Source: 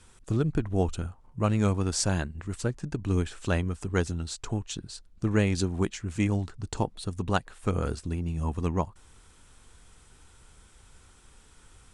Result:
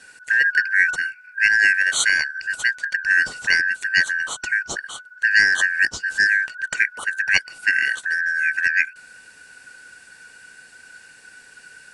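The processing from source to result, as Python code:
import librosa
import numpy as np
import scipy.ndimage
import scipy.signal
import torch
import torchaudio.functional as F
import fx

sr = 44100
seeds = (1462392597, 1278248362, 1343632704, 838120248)

y = fx.band_shuffle(x, sr, order='3142')
y = F.gain(torch.from_numpy(y), 8.0).numpy()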